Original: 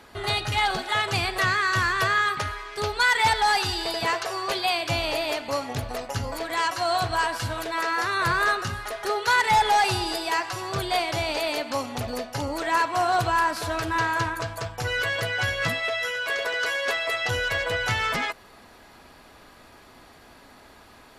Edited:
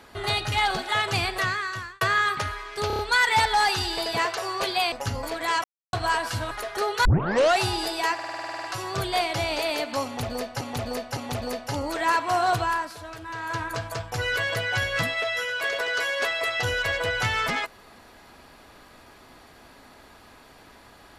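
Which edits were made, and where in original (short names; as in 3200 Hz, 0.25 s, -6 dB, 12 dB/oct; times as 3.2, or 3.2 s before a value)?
1.24–2.01 fade out
2.87 stutter 0.03 s, 5 plays
4.8–6.01 cut
6.73–7.02 mute
7.6–8.79 cut
9.33 tape start 0.55 s
10.42 stutter 0.05 s, 11 plays
11.83–12.39 loop, 3 plays
13.18–14.45 dip -11.5 dB, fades 0.45 s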